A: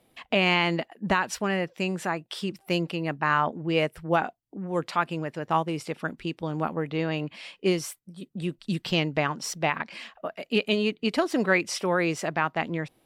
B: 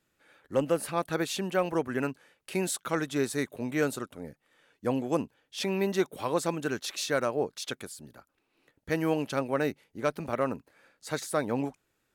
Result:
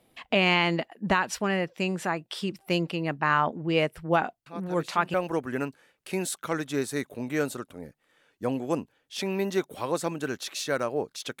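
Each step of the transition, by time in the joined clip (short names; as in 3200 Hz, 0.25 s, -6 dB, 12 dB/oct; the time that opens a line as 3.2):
A
4.46 add B from 0.88 s 0.68 s -11.5 dB
5.14 switch to B from 1.56 s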